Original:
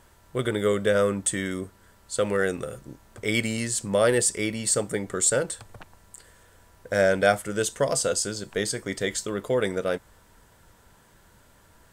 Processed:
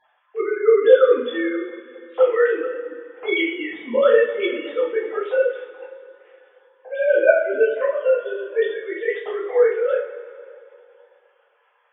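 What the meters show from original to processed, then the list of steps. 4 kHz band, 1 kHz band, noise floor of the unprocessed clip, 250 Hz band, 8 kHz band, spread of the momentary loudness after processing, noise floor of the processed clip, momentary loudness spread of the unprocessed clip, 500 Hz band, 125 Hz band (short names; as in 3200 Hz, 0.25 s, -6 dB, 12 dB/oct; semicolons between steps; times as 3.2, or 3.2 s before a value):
-3.0 dB, +1.0 dB, -57 dBFS, 0.0 dB, under -40 dB, 18 LU, -63 dBFS, 11 LU, +8.5 dB, under -25 dB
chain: sine-wave speech; two-slope reverb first 0.4 s, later 2.6 s, from -18 dB, DRR -8.5 dB; gain -2 dB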